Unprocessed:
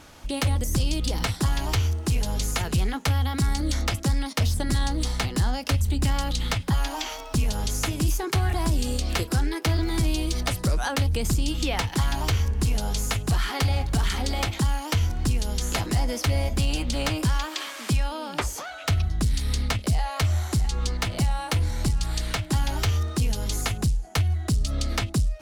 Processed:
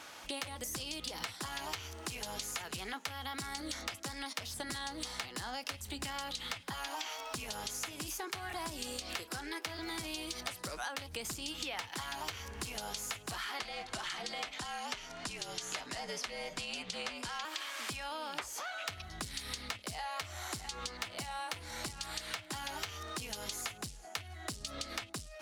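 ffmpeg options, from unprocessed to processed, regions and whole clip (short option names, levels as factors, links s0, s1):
-filter_complex "[0:a]asettb=1/sr,asplit=3[s0][s1][s2];[s0]atrim=end=13.594[s3];[s1]atrim=start=13.59:end=17.45,asetpts=PTS-STARTPTS,afade=t=in:d=0.004:c=qsin,afade=t=out:st=3.856:d=0.004:c=qsin,lowpass=8700,afreqshift=-57[s4];[s2]atrim=start=17.446[s5];[s3][s4]acrossfade=d=0.004:c1=hsin:c2=qsin[s6];[s6][s5]acrossfade=d=0.004:c1=qsin:c2=hsin,highpass=f=1300:p=1,highshelf=f=3700:g=-6,acompressor=threshold=0.00794:ratio=6,volume=1.68"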